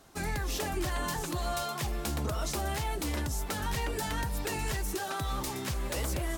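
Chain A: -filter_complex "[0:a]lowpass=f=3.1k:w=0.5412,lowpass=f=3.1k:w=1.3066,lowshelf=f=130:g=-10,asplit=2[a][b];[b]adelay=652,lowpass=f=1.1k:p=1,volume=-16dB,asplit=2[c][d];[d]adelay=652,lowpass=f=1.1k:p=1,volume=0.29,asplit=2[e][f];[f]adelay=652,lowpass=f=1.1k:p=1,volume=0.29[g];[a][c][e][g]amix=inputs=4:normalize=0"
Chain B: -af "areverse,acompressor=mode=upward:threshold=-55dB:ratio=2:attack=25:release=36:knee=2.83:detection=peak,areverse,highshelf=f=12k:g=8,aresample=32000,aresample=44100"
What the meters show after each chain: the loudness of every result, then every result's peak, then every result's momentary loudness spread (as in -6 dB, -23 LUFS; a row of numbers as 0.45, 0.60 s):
-37.0, -33.0 LUFS; -24.0, -21.5 dBFS; 3, 2 LU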